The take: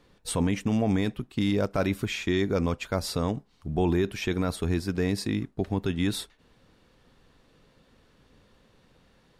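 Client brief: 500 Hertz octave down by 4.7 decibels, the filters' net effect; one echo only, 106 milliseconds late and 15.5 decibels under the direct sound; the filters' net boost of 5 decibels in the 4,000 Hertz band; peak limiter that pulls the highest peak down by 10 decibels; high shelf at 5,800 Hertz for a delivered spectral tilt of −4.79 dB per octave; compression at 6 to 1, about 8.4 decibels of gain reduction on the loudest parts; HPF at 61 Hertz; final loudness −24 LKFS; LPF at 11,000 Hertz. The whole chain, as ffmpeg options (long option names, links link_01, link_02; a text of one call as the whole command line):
ffmpeg -i in.wav -af "highpass=61,lowpass=11000,equalizer=frequency=500:width_type=o:gain=-6.5,equalizer=frequency=4000:width_type=o:gain=8,highshelf=frequency=5800:gain=-5.5,acompressor=threshold=-31dB:ratio=6,alimiter=level_in=6.5dB:limit=-24dB:level=0:latency=1,volume=-6.5dB,aecho=1:1:106:0.168,volume=16.5dB" out.wav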